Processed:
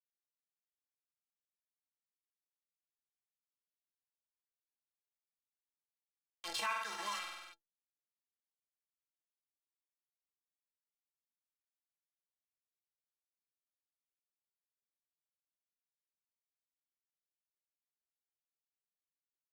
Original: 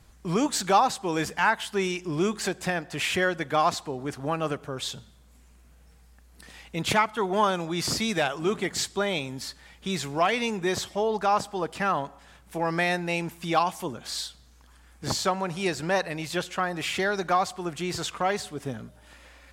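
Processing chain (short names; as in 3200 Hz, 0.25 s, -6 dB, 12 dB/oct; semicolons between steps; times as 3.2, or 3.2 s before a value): Doppler pass-by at 6.74, 16 m/s, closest 1.1 m; bit-crush 6-bit; three-band isolator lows -21 dB, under 560 Hz, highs -18 dB, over 7800 Hz; metallic resonator 99 Hz, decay 0.22 s, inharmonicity 0.03; on a send: flutter echo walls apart 8.3 m, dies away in 0.33 s; on the sum: compressor 5:1, threshold -47 dBFS, peak gain reduction 16.5 dB; formant shift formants +3 st; sustainer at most 44 dB/s; gain +10 dB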